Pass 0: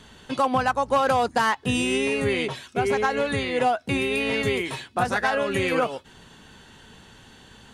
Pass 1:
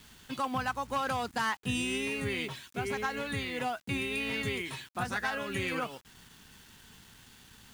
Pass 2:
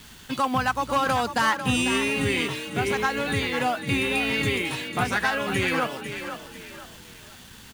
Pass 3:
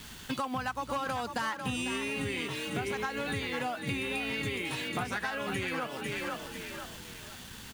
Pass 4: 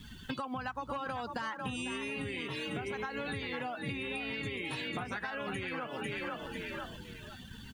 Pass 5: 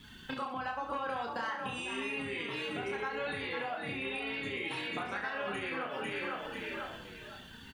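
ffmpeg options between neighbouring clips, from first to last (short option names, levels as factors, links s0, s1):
-af "acrusher=bits=7:mix=0:aa=0.000001,equalizer=f=550:t=o:w=1.4:g=-8.5,volume=0.473"
-filter_complex "[0:a]asplit=5[s0][s1][s2][s3][s4];[s1]adelay=497,afreqshift=34,volume=0.335[s5];[s2]adelay=994,afreqshift=68,volume=0.117[s6];[s3]adelay=1491,afreqshift=102,volume=0.0412[s7];[s4]adelay=1988,afreqshift=136,volume=0.0143[s8];[s0][s5][s6][s7][s8]amix=inputs=5:normalize=0,volume=2.66"
-af "acompressor=threshold=0.0282:ratio=6"
-af "afftdn=nr=16:nf=-45,acompressor=threshold=0.0141:ratio=6,volume=1.33"
-filter_complex "[0:a]bass=f=250:g=-9,treble=f=4000:g=-5,asplit=2[s0][s1];[s1]aecho=0:1:30|69|119.7|185.6|271.3:0.631|0.398|0.251|0.158|0.1[s2];[s0][s2]amix=inputs=2:normalize=0"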